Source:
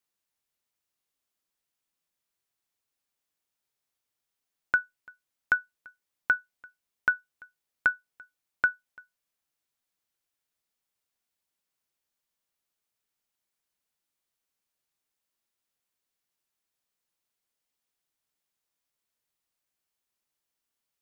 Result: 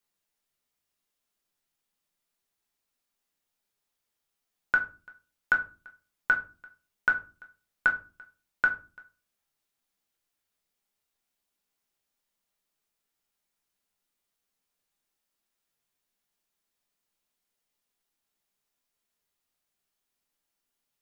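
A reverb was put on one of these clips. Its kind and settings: simulated room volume 180 m³, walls furnished, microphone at 1.3 m

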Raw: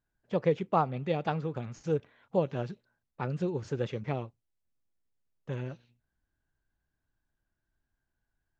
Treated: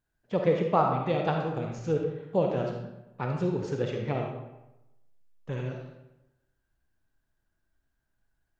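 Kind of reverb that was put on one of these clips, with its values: algorithmic reverb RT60 0.96 s, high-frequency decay 0.7×, pre-delay 10 ms, DRR 1.5 dB; trim +1.5 dB

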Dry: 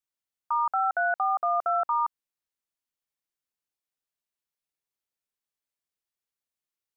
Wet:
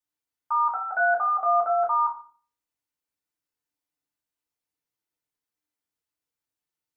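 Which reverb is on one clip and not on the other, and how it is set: FDN reverb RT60 0.42 s, low-frequency decay 1.45×, high-frequency decay 0.55×, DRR -4 dB; trim -3.5 dB

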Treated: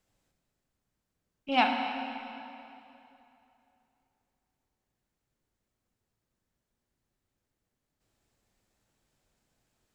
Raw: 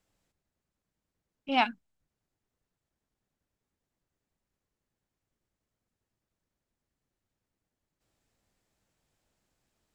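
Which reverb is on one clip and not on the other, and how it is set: plate-style reverb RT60 2.9 s, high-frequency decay 0.85×, DRR 2.5 dB

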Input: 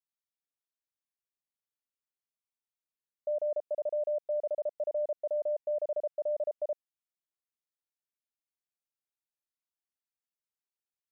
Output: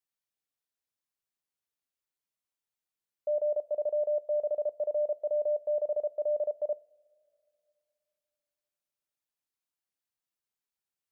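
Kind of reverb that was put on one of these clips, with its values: two-slope reverb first 0.3 s, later 2.6 s, from -20 dB, DRR 15.5 dB; trim +1.5 dB

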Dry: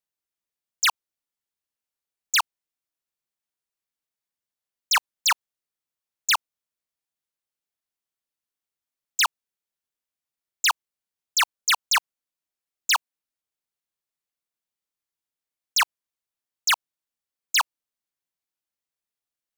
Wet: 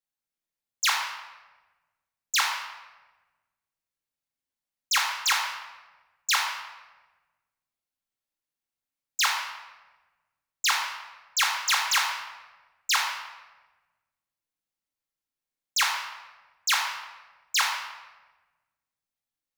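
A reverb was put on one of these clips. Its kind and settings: simulated room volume 830 m³, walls mixed, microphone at 2.2 m; trim -5.5 dB

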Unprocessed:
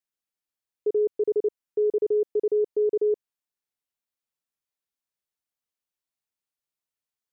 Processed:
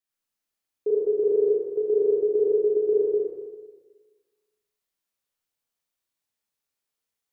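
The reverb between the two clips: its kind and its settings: Schroeder reverb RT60 1.4 s, combs from 27 ms, DRR -5 dB; trim -1 dB

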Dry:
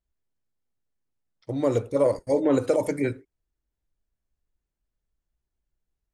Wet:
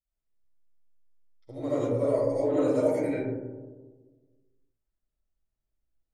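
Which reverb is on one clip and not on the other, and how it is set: algorithmic reverb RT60 1.4 s, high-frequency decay 0.25×, pre-delay 35 ms, DRR -10 dB; trim -14.5 dB

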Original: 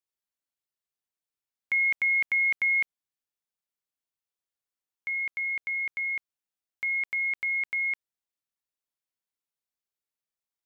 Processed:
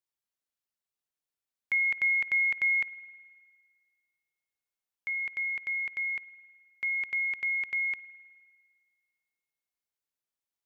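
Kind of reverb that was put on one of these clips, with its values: spring tank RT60 1.8 s, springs 51 ms, chirp 80 ms, DRR 16.5 dB; trim -1.5 dB

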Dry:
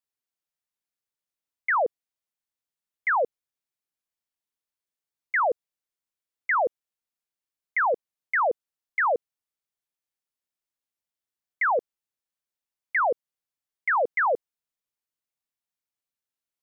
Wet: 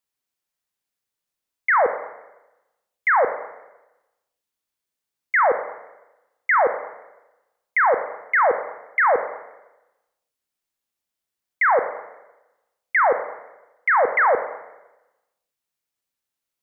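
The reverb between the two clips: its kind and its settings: Schroeder reverb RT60 1 s, combs from 29 ms, DRR 8 dB; trim +5.5 dB

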